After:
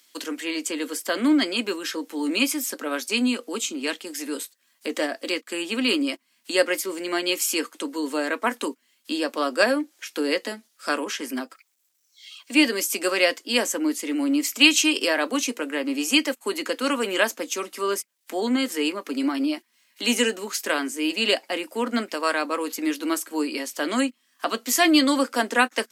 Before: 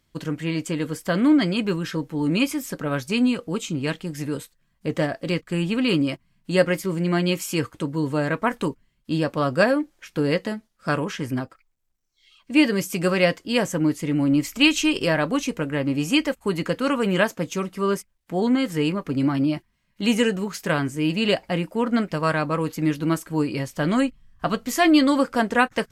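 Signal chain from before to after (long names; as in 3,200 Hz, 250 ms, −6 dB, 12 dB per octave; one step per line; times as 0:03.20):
Butterworth high-pass 230 Hz 72 dB per octave
high-shelf EQ 2,700 Hz +11 dB
one half of a high-frequency compander encoder only
level −2.5 dB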